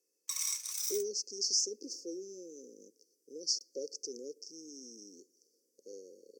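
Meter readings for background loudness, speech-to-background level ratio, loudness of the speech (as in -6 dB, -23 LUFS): -35.0 LUFS, -1.0 dB, -36.0 LUFS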